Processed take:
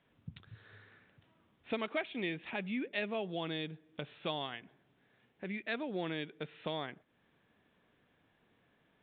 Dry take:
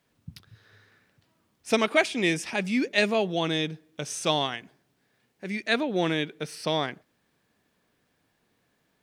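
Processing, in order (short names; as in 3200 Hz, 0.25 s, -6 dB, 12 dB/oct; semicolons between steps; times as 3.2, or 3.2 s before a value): compressor 2:1, threshold -44 dBFS, peak gain reduction 15.5 dB; downsampling 8000 Hz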